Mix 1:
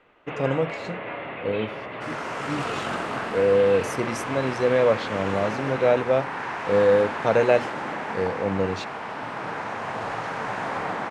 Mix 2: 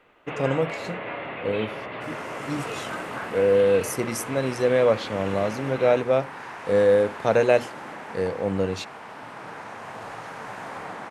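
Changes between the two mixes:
second sound -7.5 dB; master: remove air absorption 64 m

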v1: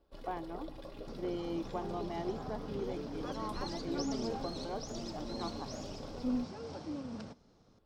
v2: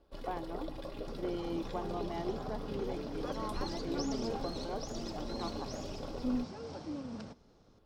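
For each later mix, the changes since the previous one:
first sound +4.5 dB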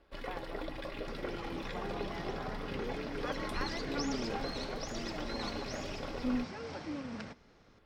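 speech -8.5 dB; master: add bell 2000 Hz +13 dB 1.2 oct

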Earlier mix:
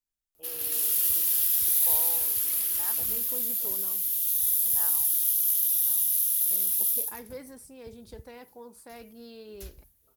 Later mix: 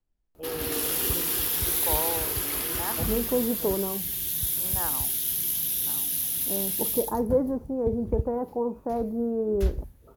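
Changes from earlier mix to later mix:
first voice -5.5 dB; second voice: add LPF 1100 Hz 24 dB/oct; master: remove pre-emphasis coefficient 0.9

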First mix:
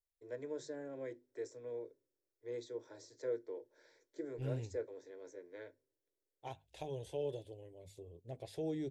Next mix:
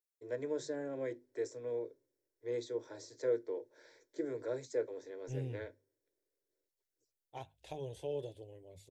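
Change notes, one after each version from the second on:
first voice +5.5 dB; second voice: entry +0.90 s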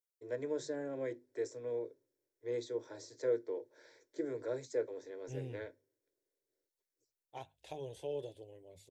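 second voice: add low shelf 130 Hz -8.5 dB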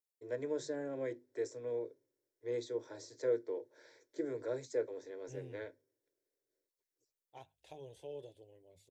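second voice -6.5 dB

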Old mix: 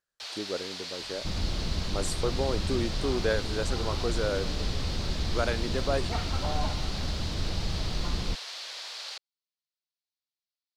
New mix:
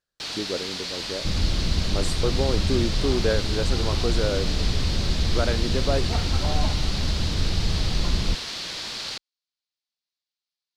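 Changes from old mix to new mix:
first sound: remove ladder high-pass 450 Hz, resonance 30%; master: add low shelf 480 Hz +7.5 dB

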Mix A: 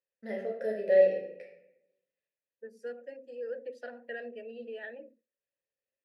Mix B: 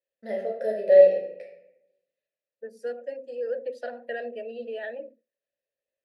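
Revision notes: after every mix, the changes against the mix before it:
second voice +3.5 dB; master: add fifteen-band EQ 630 Hz +9 dB, 4000 Hz +6 dB, 10000 Hz +6 dB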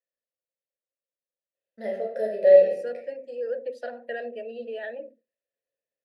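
first voice: entry +1.55 s

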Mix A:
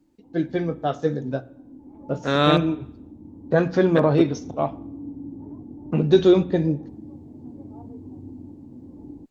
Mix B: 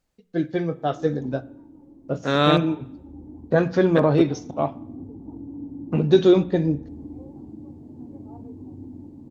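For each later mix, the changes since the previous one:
background: entry +0.55 s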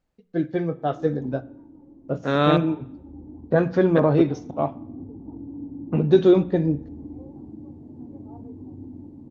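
master: add high shelf 3600 Hz -11.5 dB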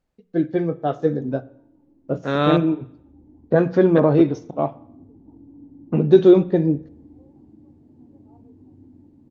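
first voice: add bell 340 Hz +4 dB 1.8 oct; background -9.0 dB

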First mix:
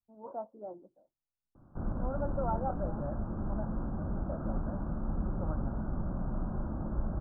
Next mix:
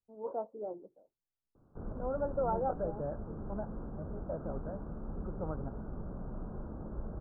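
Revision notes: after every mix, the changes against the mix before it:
background -7.5 dB; master: add bell 440 Hz +11.5 dB 0.37 oct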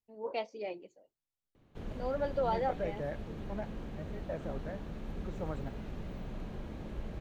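first voice: remove air absorption 280 m; master: remove steep low-pass 1500 Hz 96 dB/oct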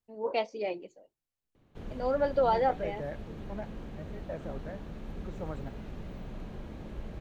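first voice +6.0 dB

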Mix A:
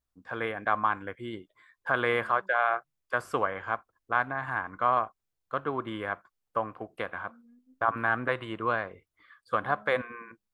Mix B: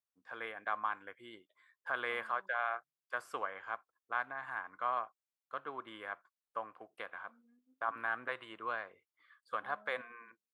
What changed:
first voice -7.5 dB; master: add HPF 840 Hz 6 dB/oct

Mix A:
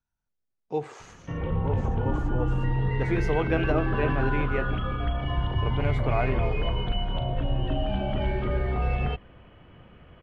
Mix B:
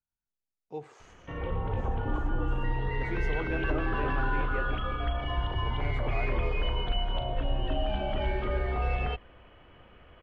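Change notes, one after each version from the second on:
speech -10.0 dB; background: add bell 150 Hz -10.5 dB 1.7 oct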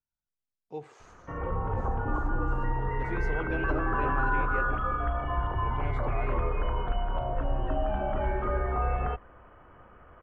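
background: add synth low-pass 1300 Hz, resonance Q 2

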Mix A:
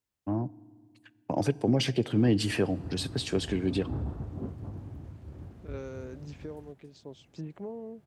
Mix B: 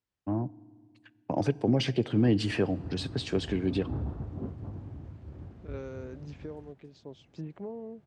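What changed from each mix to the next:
master: add air absorption 85 m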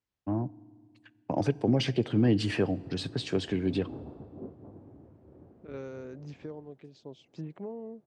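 background: add band-pass 450 Hz, Q 1.1

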